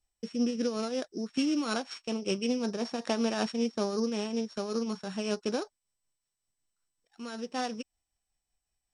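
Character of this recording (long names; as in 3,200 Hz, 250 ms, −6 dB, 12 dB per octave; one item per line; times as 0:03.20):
a buzz of ramps at a fixed pitch in blocks of 8 samples
tremolo triangle 5.3 Hz, depth 60%
MP2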